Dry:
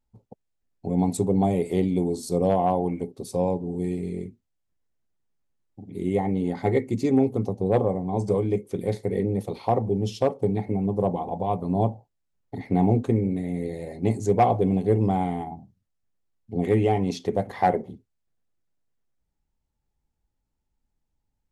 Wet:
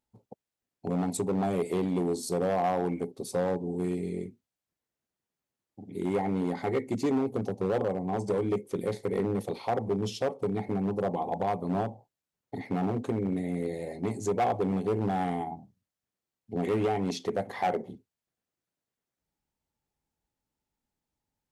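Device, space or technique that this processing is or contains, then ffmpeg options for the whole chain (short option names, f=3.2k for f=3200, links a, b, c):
limiter into clipper: -af "alimiter=limit=-15dB:level=0:latency=1:release=183,asoftclip=type=hard:threshold=-20.5dB,highpass=f=210:p=1"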